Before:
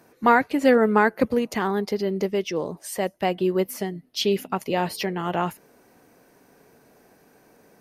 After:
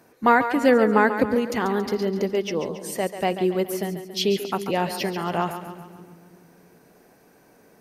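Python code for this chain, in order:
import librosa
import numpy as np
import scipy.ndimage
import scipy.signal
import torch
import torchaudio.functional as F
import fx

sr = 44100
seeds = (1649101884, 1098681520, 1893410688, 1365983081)

y = fx.echo_split(x, sr, split_hz=340.0, low_ms=321, high_ms=139, feedback_pct=52, wet_db=-10.0)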